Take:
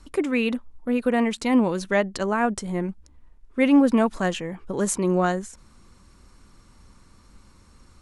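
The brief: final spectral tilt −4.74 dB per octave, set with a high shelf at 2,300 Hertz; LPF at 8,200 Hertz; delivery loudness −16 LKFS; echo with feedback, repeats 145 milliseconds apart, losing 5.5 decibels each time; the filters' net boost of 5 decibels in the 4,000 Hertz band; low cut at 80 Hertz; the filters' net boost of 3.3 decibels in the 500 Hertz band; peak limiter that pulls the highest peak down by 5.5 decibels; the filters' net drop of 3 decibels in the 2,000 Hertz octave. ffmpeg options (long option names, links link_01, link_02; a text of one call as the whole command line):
ffmpeg -i in.wav -af "highpass=80,lowpass=8200,equalizer=frequency=500:width_type=o:gain=4,equalizer=frequency=2000:width_type=o:gain=-9,highshelf=frequency=2300:gain=7.5,equalizer=frequency=4000:width_type=o:gain=3.5,alimiter=limit=-12.5dB:level=0:latency=1,aecho=1:1:145|290|435|580|725|870|1015:0.531|0.281|0.149|0.079|0.0419|0.0222|0.0118,volume=6.5dB" out.wav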